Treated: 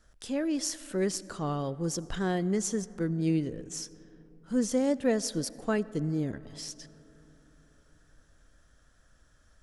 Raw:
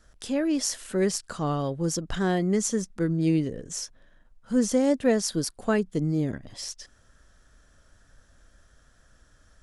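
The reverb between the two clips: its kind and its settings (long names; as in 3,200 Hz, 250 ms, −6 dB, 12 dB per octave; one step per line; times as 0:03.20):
comb and all-pass reverb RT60 4 s, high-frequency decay 0.35×, pre-delay 40 ms, DRR 18.5 dB
level −4.5 dB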